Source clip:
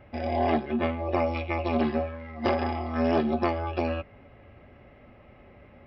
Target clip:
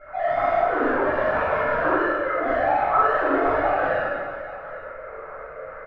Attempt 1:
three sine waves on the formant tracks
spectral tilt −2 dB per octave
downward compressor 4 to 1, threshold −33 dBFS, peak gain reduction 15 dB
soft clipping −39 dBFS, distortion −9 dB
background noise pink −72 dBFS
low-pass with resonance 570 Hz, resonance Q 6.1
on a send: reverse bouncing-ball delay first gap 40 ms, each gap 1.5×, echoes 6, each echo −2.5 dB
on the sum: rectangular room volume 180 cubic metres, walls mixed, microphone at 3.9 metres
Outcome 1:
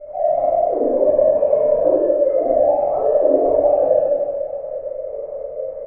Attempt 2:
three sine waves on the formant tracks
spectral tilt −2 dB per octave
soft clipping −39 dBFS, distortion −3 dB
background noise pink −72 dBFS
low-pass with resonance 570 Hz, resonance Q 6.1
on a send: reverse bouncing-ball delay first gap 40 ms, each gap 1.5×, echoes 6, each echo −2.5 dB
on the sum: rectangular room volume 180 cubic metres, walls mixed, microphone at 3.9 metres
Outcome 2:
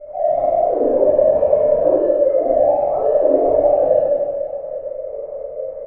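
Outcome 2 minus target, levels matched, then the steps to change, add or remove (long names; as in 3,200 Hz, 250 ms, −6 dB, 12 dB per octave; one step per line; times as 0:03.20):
1,000 Hz band −8.0 dB
change: low-pass with resonance 1,400 Hz, resonance Q 6.1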